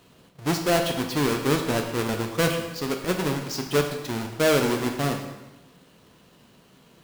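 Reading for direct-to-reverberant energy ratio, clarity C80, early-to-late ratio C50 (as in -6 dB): 3.0 dB, 8.0 dB, 6.0 dB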